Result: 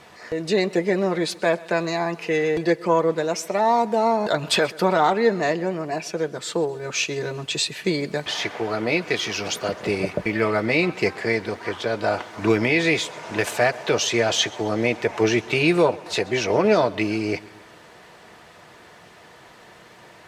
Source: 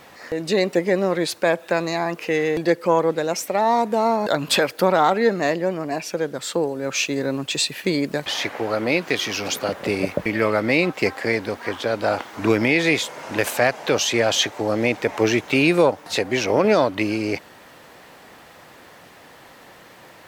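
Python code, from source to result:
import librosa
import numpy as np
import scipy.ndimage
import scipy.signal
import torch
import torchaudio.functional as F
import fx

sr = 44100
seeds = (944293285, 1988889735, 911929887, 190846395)

p1 = scipy.signal.sosfilt(scipy.signal.butter(2, 9600.0, 'lowpass', fs=sr, output='sos'), x)
p2 = fx.notch_comb(p1, sr, f0_hz=270.0)
y = p2 + fx.echo_feedback(p2, sr, ms=131, feedback_pct=55, wet_db=-22.0, dry=0)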